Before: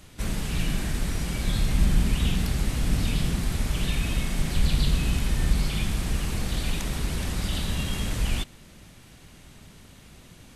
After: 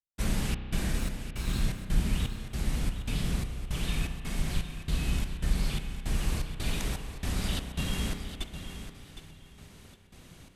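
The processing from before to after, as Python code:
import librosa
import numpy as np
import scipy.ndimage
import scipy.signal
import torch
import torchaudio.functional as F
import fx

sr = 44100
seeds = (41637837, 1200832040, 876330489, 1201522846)

y = fx.lower_of_two(x, sr, delay_ms=0.75, at=(0.98, 1.62))
y = fx.rider(y, sr, range_db=10, speed_s=2.0)
y = fx.step_gate(y, sr, bpm=166, pattern='..xxxx..xxxx.', floor_db=-60.0, edge_ms=4.5)
y = fx.echo_feedback(y, sr, ms=762, feedback_pct=23, wet_db=-10.5)
y = fx.rev_spring(y, sr, rt60_s=2.4, pass_ms=(32,), chirp_ms=70, drr_db=8.0)
y = y * librosa.db_to_amplitude(-4.5)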